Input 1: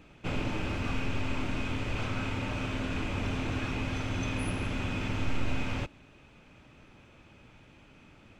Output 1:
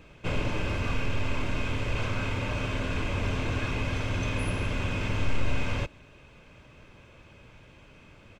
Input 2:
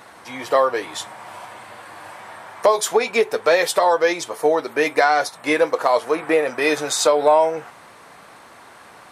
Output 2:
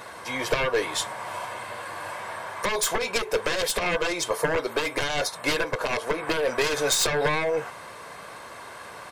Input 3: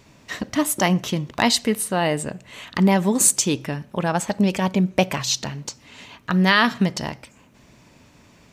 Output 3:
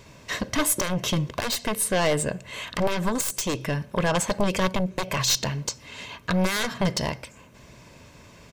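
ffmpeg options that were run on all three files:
-af "aeval=exprs='0.794*(cos(1*acos(clip(val(0)/0.794,-1,1)))-cos(1*PI/2))+0.178*(cos(3*acos(clip(val(0)/0.794,-1,1)))-cos(3*PI/2))+0.1*(cos(4*acos(clip(val(0)/0.794,-1,1)))-cos(4*PI/2))+0.224*(cos(7*acos(clip(val(0)/0.794,-1,1)))-cos(7*PI/2))':c=same,alimiter=limit=-13dB:level=0:latency=1:release=195,aecho=1:1:1.9:0.35,volume=-1.5dB"

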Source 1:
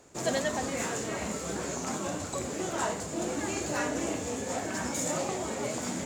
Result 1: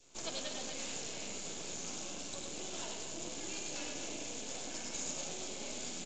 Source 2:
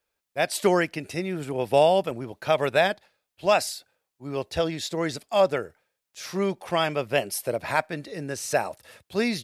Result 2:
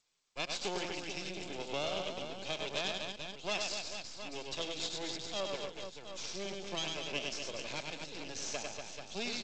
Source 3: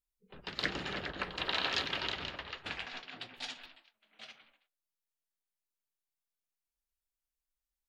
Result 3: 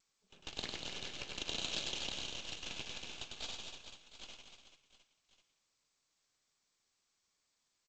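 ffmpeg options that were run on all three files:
-filter_complex "[0:a]highshelf=f=2.2k:t=q:w=1.5:g=9.5,aecho=1:1:100|240|436|710.4|1095:0.631|0.398|0.251|0.158|0.1,acrossover=split=550[a][b];[b]aeval=exprs='(mod(1.88*val(0)+1,2)-1)/1.88':c=same[c];[a][c]amix=inputs=2:normalize=0,acompressor=threshold=-30dB:ratio=1.5,highpass=130,aeval=exprs='max(val(0),0)':c=same,bandreject=f=1.9k:w=12,acrossover=split=190|3000[d][e][f];[d]acompressor=threshold=-39dB:ratio=8[g];[g][e][f]amix=inputs=3:normalize=0,adynamicequalizer=threshold=0.00398:dfrequency=1200:dqfactor=1.4:tfrequency=1200:tqfactor=1.4:attack=5:release=100:ratio=0.375:range=2.5:mode=cutabove:tftype=bell,volume=-7dB" -ar 16000 -c:a g722

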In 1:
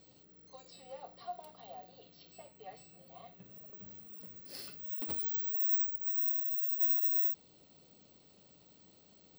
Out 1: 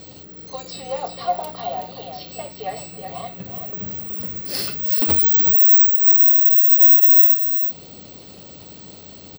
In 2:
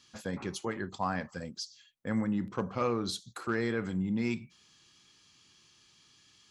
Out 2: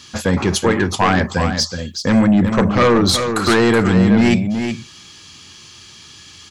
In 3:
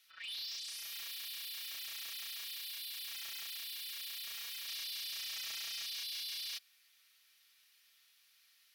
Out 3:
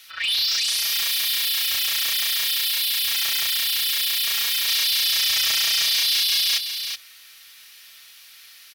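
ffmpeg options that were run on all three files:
-af "equalizer=f=84:w=5.3:g=10.5,aeval=exprs='0.141*sin(PI/2*2.51*val(0)/0.141)':c=same,aecho=1:1:374:0.422,volume=9dB"

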